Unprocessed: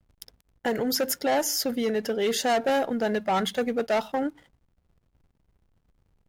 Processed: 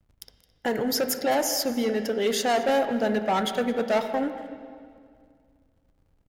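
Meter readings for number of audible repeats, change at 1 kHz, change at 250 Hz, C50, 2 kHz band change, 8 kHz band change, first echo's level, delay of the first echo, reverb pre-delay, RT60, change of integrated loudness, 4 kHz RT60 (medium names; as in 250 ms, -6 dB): 1, +1.0 dB, +1.0 dB, 9.0 dB, +0.5 dB, 0.0 dB, -19.0 dB, 217 ms, 22 ms, 2.1 s, +1.0 dB, 1.9 s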